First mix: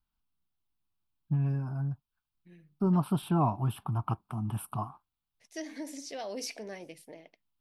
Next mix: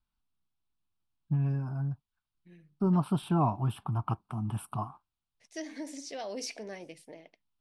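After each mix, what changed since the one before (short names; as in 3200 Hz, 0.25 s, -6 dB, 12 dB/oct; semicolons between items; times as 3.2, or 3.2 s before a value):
master: add LPF 10000 Hz 24 dB/oct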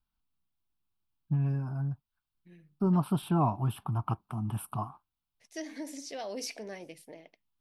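master: remove LPF 10000 Hz 24 dB/oct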